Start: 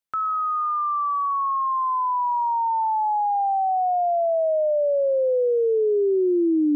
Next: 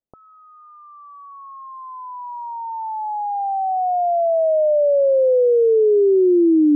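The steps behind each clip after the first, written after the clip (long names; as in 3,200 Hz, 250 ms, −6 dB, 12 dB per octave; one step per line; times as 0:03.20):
inverse Chebyshev low-pass filter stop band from 1,400 Hz, stop band 40 dB
level +6 dB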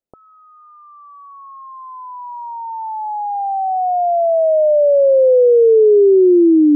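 parametric band 440 Hz +5 dB 1.6 octaves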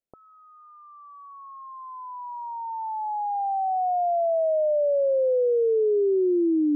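downward compressor 3 to 1, threshold −16 dBFS, peak gain reduction 6 dB
level −6 dB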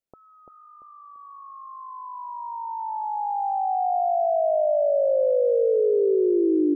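repeating echo 341 ms, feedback 36%, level −5 dB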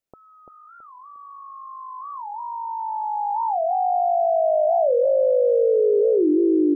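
wow of a warped record 45 rpm, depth 250 cents
level +2.5 dB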